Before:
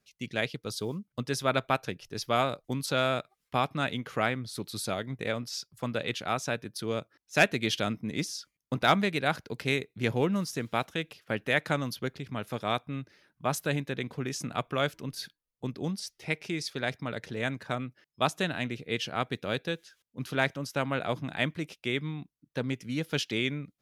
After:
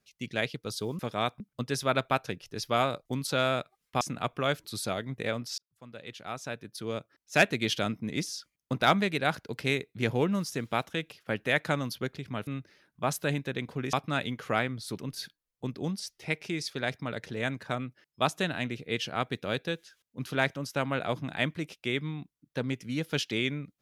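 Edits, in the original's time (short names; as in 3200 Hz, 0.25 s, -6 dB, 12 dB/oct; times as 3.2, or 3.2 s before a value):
3.6–4.65 swap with 14.35–14.98
5.59–7.37 fade in
12.48–12.89 move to 0.99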